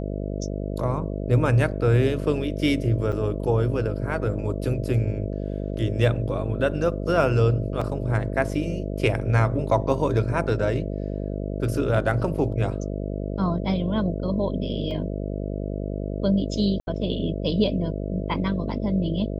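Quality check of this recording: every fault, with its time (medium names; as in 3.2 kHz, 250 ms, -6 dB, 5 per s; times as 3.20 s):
buzz 50 Hz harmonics 13 -29 dBFS
3.12–3.13 s: dropout 6.9 ms
7.81 s: dropout 4.8 ms
14.91 s: dropout 2.1 ms
16.80–16.87 s: dropout 71 ms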